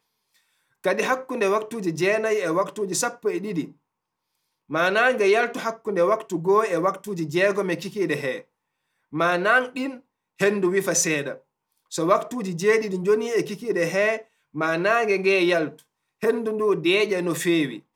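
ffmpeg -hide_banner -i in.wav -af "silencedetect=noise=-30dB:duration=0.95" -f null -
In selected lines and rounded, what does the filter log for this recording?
silence_start: 3.65
silence_end: 4.72 | silence_duration: 1.07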